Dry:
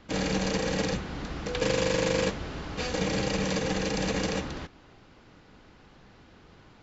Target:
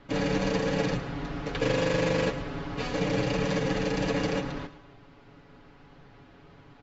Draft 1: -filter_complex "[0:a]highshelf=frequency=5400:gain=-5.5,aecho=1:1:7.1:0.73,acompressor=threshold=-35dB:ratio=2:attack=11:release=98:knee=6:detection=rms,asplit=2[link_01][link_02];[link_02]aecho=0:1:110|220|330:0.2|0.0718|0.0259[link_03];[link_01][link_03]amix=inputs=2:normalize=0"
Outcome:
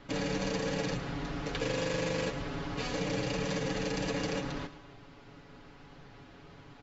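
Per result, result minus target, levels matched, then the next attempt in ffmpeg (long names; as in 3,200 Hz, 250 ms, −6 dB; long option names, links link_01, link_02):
downward compressor: peak gain reduction +8 dB; 8,000 Hz band +5.5 dB
-filter_complex "[0:a]highshelf=frequency=5400:gain=-5.5,aecho=1:1:7.1:0.73,asplit=2[link_01][link_02];[link_02]aecho=0:1:110|220|330:0.2|0.0718|0.0259[link_03];[link_01][link_03]amix=inputs=2:normalize=0"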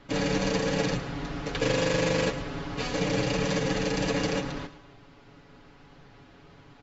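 8,000 Hz band +5.5 dB
-filter_complex "[0:a]highshelf=frequency=5400:gain=-16,aecho=1:1:7.1:0.73,asplit=2[link_01][link_02];[link_02]aecho=0:1:110|220|330:0.2|0.0718|0.0259[link_03];[link_01][link_03]amix=inputs=2:normalize=0"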